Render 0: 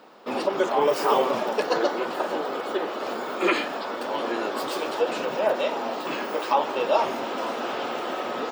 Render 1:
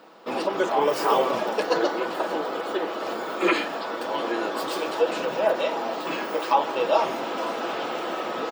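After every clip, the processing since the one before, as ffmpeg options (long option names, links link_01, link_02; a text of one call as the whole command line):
ffmpeg -i in.wav -af "bandreject=frequency=50:width_type=h:width=6,bandreject=frequency=100:width_type=h:width=6,bandreject=frequency=150:width_type=h:width=6,aecho=1:1:6.1:0.32" out.wav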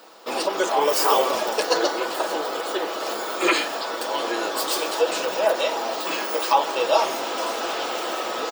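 ffmpeg -i in.wav -af "bass=frequency=250:gain=-12,treble=frequency=4000:gain=12,volume=2dB" out.wav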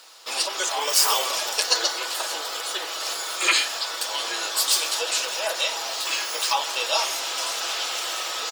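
ffmpeg -i in.wav -af "bandpass=frequency=7600:width_type=q:width=0.55:csg=0,volume=8dB" out.wav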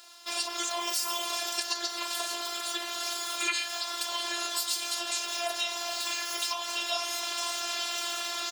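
ffmpeg -i in.wav -af "acompressor=threshold=-25dB:ratio=4,afftfilt=real='hypot(re,im)*cos(PI*b)':imag='0':win_size=512:overlap=0.75" out.wav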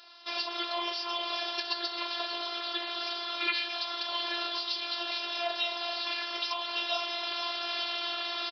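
ffmpeg -i in.wav -af "aecho=1:1:218:0.224,aresample=11025,aresample=44100" out.wav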